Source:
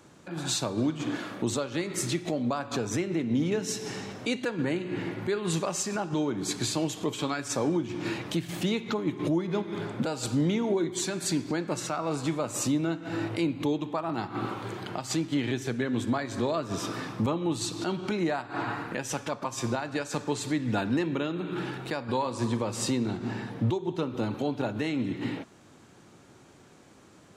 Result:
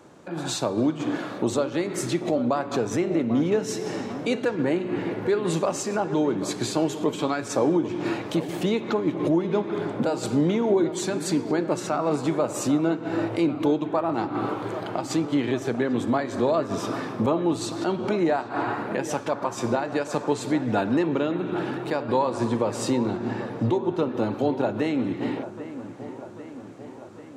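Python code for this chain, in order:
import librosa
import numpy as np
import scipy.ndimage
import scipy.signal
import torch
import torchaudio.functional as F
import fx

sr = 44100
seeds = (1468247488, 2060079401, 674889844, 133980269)

y = fx.peak_eq(x, sr, hz=560.0, db=9.0, octaves=2.7)
y = fx.echo_wet_lowpass(y, sr, ms=793, feedback_pct=64, hz=2400.0, wet_db=-13.0)
y = y * librosa.db_to_amplitude(-1.5)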